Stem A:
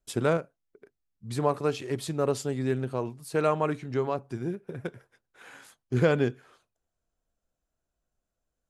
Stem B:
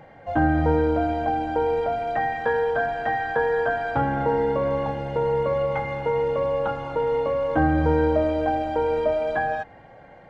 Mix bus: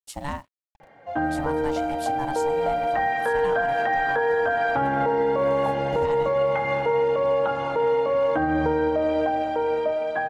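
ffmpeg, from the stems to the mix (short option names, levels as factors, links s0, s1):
-filter_complex "[0:a]aeval=exprs='val(0)*sin(2*PI*430*n/s)':c=same,highshelf=f=2700:g=7.5,acrusher=bits=8:mix=0:aa=0.5,volume=0.631[s0];[1:a]highpass=f=280:p=1,dynaudnorm=f=240:g=17:m=3.76,adelay=800,volume=0.75[s1];[s0][s1]amix=inputs=2:normalize=0,alimiter=limit=0.188:level=0:latency=1:release=149"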